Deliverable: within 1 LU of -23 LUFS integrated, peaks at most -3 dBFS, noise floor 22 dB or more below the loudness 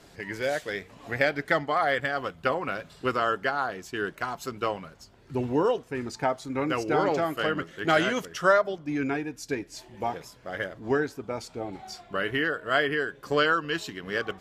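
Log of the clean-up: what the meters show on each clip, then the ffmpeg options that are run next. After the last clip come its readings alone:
loudness -28.0 LUFS; peak level -8.5 dBFS; loudness target -23.0 LUFS
-> -af "volume=1.78"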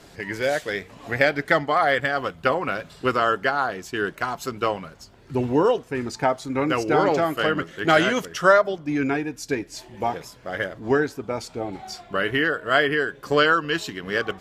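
loudness -23.0 LUFS; peak level -3.5 dBFS; noise floor -49 dBFS

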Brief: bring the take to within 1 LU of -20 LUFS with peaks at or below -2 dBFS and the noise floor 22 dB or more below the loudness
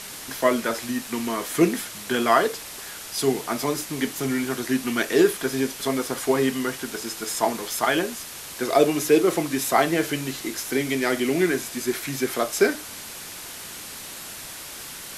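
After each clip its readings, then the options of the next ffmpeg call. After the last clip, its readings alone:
noise floor -38 dBFS; noise floor target -46 dBFS; loudness -24.0 LUFS; peak level -4.5 dBFS; loudness target -20.0 LUFS
-> -af "afftdn=nr=8:nf=-38"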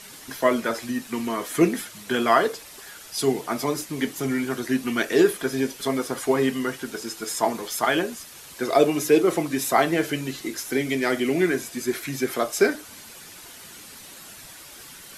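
noise floor -44 dBFS; noise floor target -46 dBFS
-> -af "afftdn=nr=6:nf=-44"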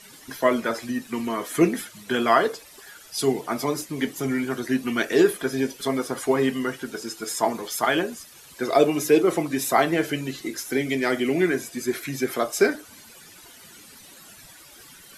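noise floor -48 dBFS; loudness -24.0 LUFS; peak level -5.0 dBFS; loudness target -20.0 LUFS
-> -af "volume=1.58,alimiter=limit=0.794:level=0:latency=1"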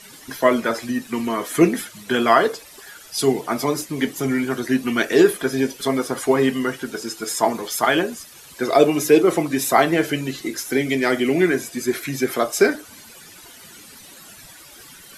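loudness -20.5 LUFS; peak level -2.0 dBFS; noise floor -44 dBFS

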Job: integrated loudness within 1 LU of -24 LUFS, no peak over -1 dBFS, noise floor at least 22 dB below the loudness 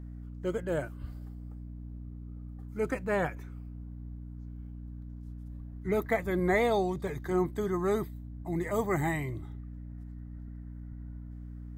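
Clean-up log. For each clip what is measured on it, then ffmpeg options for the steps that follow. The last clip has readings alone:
hum 60 Hz; highest harmonic 300 Hz; hum level -40 dBFS; loudness -31.5 LUFS; peak level -15.5 dBFS; loudness target -24.0 LUFS
-> -af "bandreject=f=60:t=h:w=6,bandreject=f=120:t=h:w=6,bandreject=f=180:t=h:w=6,bandreject=f=240:t=h:w=6,bandreject=f=300:t=h:w=6"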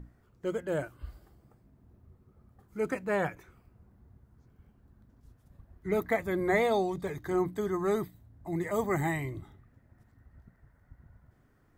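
hum not found; loudness -31.5 LUFS; peak level -16.0 dBFS; loudness target -24.0 LUFS
-> -af "volume=2.37"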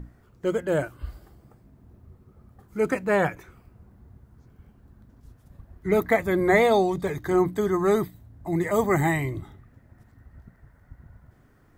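loudness -24.0 LUFS; peak level -8.5 dBFS; noise floor -58 dBFS

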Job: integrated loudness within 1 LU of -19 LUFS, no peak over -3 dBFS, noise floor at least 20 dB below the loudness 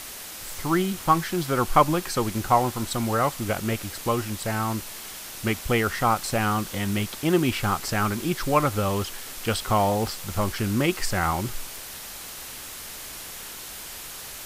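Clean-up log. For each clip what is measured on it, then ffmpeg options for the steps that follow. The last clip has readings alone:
noise floor -39 dBFS; noise floor target -46 dBFS; loudness -26.0 LUFS; peak level -4.5 dBFS; loudness target -19.0 LUFS
-> -af "afftdn=nr=7:nf=-39"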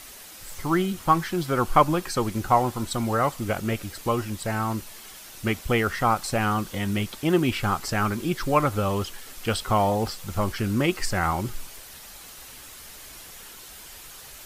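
noise floor -44 dBFS; noise floor target -46 dBFS
-> -af "afftdn=nr=6:nf=-44"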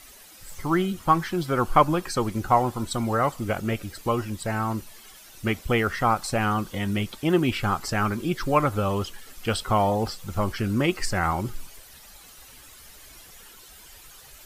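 noise floor -48 dBFS; loudness -25.5 LUFS; peak level -4.5 dBFS; loudness target -19.0 LUFS
-> -af "volume=2.11,alimiter=limit=0.708:level=0:latency=1"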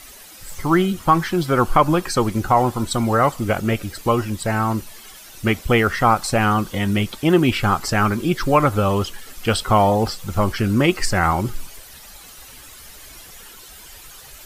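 loudness -19.5 LUFS; peak level -3.0 dBFS; noise floor -42 dBFS

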